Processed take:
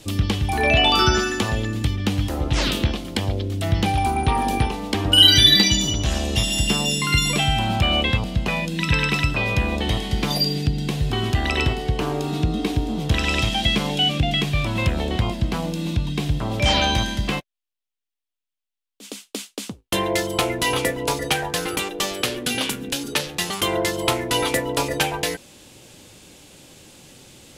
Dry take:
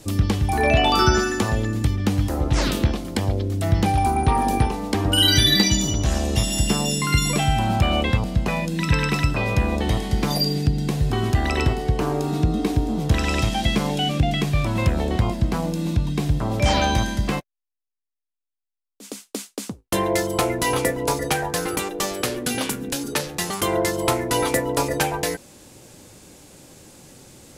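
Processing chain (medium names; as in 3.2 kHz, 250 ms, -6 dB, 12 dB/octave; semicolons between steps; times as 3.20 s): peaking EQ 3.1 kHz +8.5 dB 0.99 oct; trim -1.5 dB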